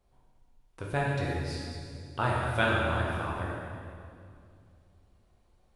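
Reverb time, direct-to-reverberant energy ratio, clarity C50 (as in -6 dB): 2.3 s, -4.0 dB, -1.0 dB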